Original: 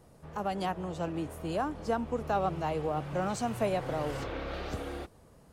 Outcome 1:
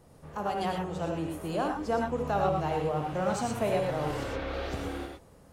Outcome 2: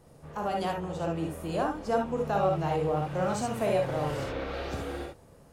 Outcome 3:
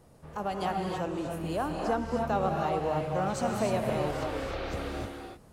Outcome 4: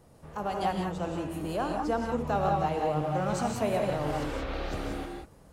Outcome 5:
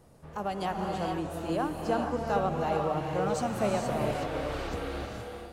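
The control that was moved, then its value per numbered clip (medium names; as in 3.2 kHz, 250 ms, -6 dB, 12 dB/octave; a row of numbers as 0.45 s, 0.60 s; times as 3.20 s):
gated-style reverb, gate: 140 ms, 90 ms, 330 ms, 210 ms, 500 ms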